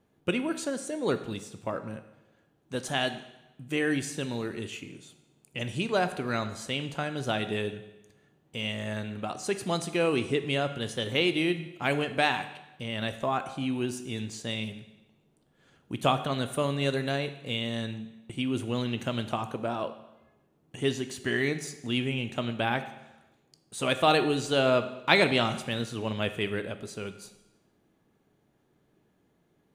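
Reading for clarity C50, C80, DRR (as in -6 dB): 12.0 dB, 13.5 dB, 9.5 dB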